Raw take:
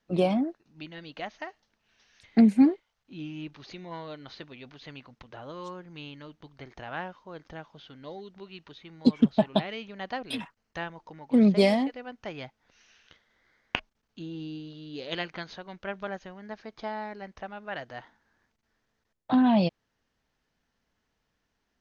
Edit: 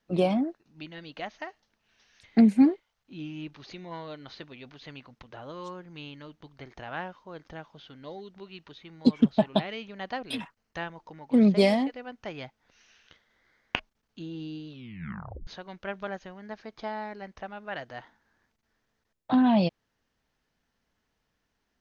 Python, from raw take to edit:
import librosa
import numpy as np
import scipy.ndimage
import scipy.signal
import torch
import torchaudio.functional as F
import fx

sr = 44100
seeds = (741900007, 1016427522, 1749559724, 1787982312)

y = fx.edit(x, sr, fx.tape_stop(start_s=14.68, length_s=0.79), tone=tone)